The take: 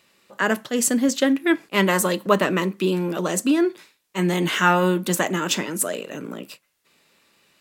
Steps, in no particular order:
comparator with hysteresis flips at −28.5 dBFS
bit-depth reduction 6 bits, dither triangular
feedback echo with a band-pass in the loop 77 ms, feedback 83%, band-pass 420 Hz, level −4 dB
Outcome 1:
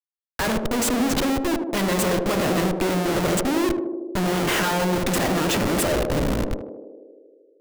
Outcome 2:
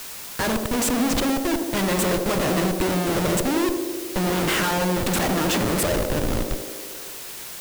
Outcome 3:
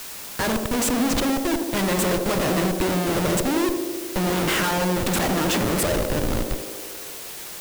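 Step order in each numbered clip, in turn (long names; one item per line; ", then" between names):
bit-depth reduction, then comparator with hysteresis, then feedback echo with a band-pass in the loop
comparator with hysteresis, then feedback echo with a band-pass in the loop, then bit-depth reduction
comparator with hysteresis, then bit-depth reduction, then feedback echo with a band-pass in the loop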